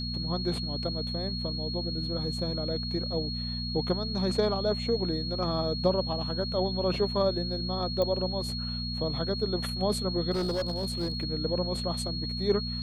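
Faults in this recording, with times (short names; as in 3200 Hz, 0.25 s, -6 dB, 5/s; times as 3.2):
hum 60 Hz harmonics 4 -35 dBFS
tone 4300 Hz -35 dBFS
8.02 pop -17 dBFS
10.31–11.24 clipped -25.5 dBFS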